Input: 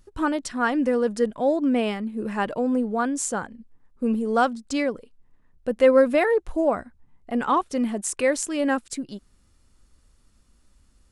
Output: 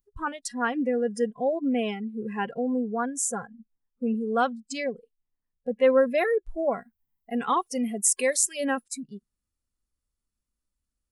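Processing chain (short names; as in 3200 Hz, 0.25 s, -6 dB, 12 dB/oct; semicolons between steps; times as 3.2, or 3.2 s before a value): 6.72–8.82 high shelf 2600 Hz -> 4400 Hz +7 dB; spectral noise reduction 22 dB; high shelf 9100 Hz +10.5 dB; gain -3.5 dB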